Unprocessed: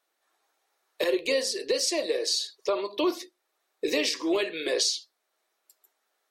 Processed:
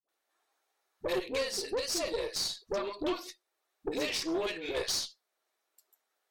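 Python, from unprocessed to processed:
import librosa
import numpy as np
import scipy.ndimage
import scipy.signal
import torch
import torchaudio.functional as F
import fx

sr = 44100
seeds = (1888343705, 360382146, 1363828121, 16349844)

y = fx.dispersion(x, sr, late='highs', ms=88.0, hz=520.0)
y = fx.tube_stage(y, sr, drive_db=23.0, bias=0.55)
y = y * librosa.db_to_amplitude(-2.5)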